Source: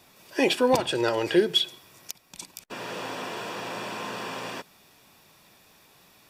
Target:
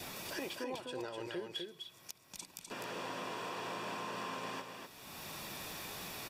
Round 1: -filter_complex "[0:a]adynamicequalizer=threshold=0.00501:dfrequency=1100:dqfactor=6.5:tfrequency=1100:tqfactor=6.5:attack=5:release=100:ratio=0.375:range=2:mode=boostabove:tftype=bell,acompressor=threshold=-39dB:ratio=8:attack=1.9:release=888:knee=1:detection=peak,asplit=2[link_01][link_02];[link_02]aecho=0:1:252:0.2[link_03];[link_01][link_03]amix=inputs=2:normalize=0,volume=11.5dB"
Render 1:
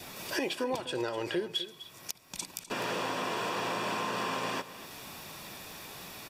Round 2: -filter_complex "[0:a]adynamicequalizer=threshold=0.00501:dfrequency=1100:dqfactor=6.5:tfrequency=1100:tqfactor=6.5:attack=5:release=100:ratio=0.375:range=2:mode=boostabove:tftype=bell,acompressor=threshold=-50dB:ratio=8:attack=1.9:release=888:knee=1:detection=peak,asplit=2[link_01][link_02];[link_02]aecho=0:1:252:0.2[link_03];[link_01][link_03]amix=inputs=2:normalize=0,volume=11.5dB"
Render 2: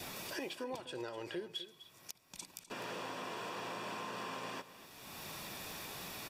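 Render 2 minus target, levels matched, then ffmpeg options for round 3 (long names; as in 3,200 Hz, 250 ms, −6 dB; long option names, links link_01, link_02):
echo-to-direct −9 dB
-filter_complex "[0:a]adynamicequalizer=threshold=0.00501:dfrequency=1100:dqfactor=6.5:tfrequency=1100:tqfactor=6.5:attack=5:release=100:ratio=0.375:range=2:mode=boostabove:tftype=bell,acompressor=threshold=-50dB:ratio=8:attack=1.9:release=888:knee=1:detection=peak,asplit=2[link_01][link_02];[link_02]aecho=0:1:252:0.562[link_03];[link_01][link_03]amix=inputs=2:normalize=0,volume=11.5dB"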